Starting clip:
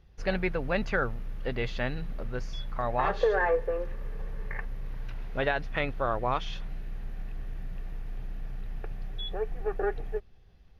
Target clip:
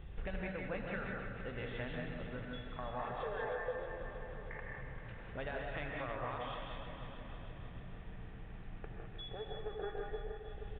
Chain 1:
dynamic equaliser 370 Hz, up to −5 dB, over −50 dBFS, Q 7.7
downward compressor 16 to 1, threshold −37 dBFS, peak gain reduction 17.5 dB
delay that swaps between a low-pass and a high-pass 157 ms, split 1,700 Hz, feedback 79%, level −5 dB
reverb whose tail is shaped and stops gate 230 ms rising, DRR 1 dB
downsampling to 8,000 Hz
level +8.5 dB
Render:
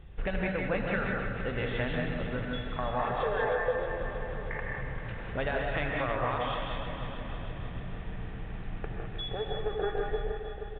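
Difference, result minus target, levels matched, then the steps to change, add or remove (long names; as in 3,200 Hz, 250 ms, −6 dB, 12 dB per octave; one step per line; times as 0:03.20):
downward compressor: peak gain reduction −10.5 dB
change: downward compressor 16 to 1, threshold −48 dBFS, peak gain reduction 28 dB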